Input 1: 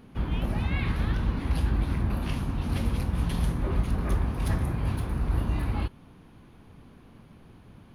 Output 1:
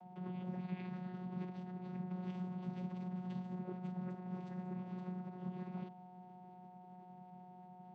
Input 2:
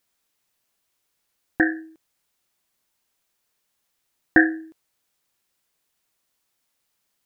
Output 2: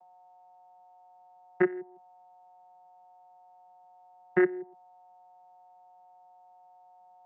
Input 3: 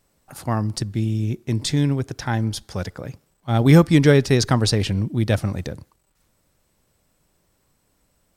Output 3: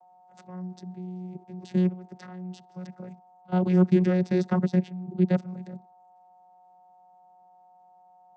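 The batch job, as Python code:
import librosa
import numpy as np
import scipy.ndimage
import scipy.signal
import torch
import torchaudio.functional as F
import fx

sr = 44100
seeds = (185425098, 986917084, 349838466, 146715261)

y = fx.level_steps(x, sr, step_db=19)
y = y + 10.0 ** (-51.0 / 20.0) * np.sin(2.0 * np.pi * 780.0 * np.arange(len(y)) / sr)
y = fx.vocoder(y, sr, bands=16, carrier='saw', carrier_hz=182.0)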